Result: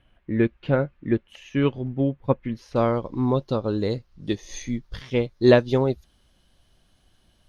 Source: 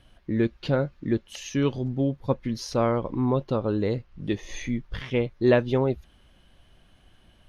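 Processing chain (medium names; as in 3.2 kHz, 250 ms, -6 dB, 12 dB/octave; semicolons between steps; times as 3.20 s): resonant high shelf 3.5 kHz -9 dB, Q 1.5, from 2.76 s +6.5 dB; upward expansion 1.5:1, over -36 dBFS; trim +5 dB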